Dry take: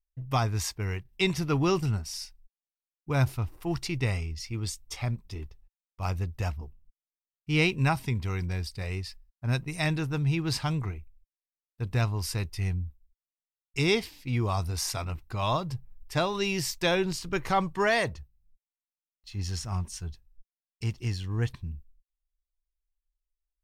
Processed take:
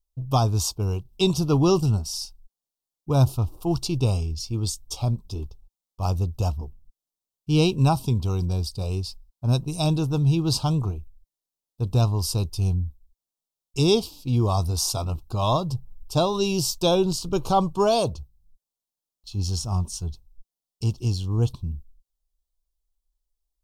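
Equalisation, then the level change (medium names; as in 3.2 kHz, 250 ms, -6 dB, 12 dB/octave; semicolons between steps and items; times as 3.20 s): Butterworth band-stop 1.9 kHz, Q 0.83; +6.5 dB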